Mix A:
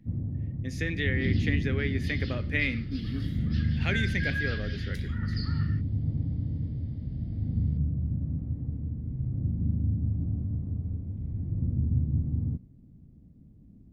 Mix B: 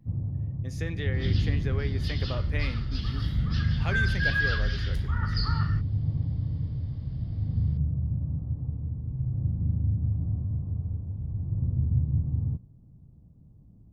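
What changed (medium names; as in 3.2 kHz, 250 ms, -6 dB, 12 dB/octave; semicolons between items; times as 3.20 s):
second sound +11.0 dB; master: add ten-band graphic EQ 125 Hz +4 dB, 250 Hz -8 dB, 1 kHz +9 dB, 2 kHz -10 dB, 4 kHz -3 dB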